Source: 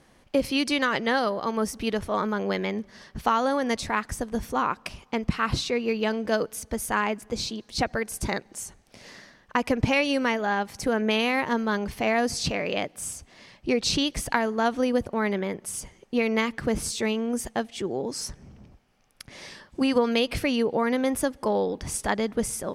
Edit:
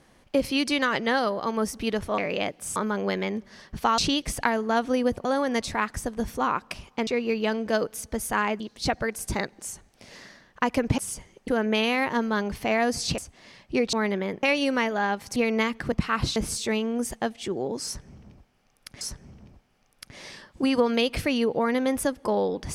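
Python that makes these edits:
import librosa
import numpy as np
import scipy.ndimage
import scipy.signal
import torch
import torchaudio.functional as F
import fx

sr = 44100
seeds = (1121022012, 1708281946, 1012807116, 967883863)

y = fx.edit(x, sr, fx.move(start_s=5.22, length_s=0.44, to_s=16.7),
    fx.cut(start_s=7.19, length_s=0.34),
    fx.swap(start_s=9.91, length_s=0.93, other_s=15.64, other_length_s=0.5),
    fx.move(start_s=12.54, length_s=0.58, to_s=2.18),
    fx.move(start_s=13.87, length_s=1.27, to_s=3.4),
    fx.repeat(start_s=18.19, length_s=1.16, count=2), tone=tone)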